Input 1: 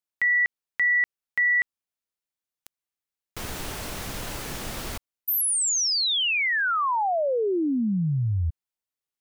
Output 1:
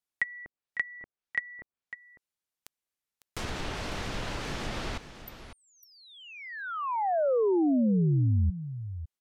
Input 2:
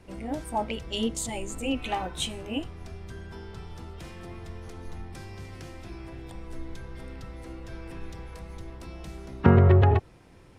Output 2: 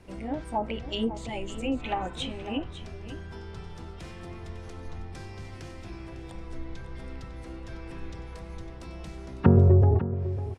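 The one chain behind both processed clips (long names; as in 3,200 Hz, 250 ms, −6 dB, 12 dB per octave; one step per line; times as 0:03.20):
treble cut that deepens with the level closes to 530 Hz, closed at −21 dBFS
on a send: single-tap delay 552 ms −12.5 dB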